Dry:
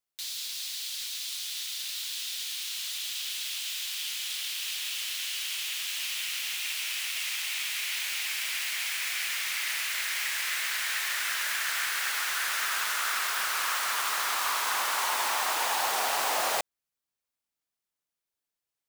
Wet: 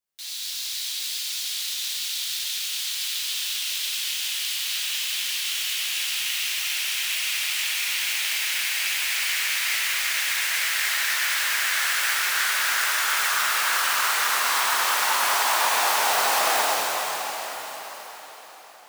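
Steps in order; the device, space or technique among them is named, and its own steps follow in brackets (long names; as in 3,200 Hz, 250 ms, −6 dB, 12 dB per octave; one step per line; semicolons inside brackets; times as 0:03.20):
cathedral (convolution reverb RT60 5.1 s, pre-delay 3 ms, DRR −8.5 dB)
level −2.5 dB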